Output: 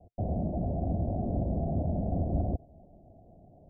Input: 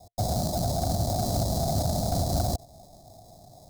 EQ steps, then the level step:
transistor ladder low-pass 610 Hz, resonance 20%
parametric band 120 Hz −8 dB 0.43 octaves
+4.5 dB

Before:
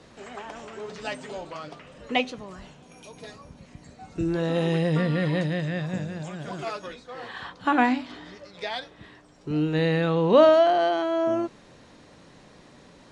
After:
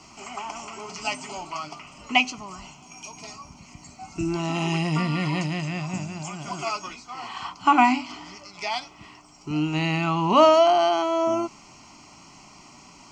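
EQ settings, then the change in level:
bass and treble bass −9 dB, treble +6 dB
parametric band 1,700 Hz −6.5 dB 0.21 octaves
phaser with its sweep stopped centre 2,500 Hz, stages 8
+8.0 dB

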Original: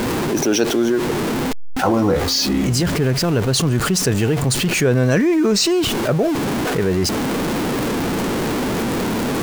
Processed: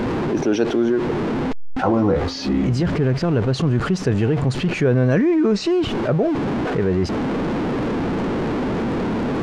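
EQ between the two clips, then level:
head-to-tape spacing loss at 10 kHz 26 dB
0.0 dB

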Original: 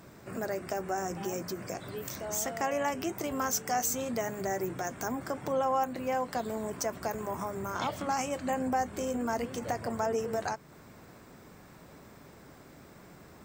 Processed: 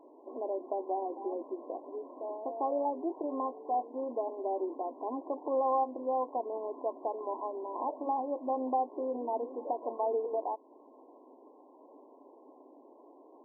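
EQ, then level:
linear-phase brick-wall band-pass 250–1,100 Hz
0.0 dB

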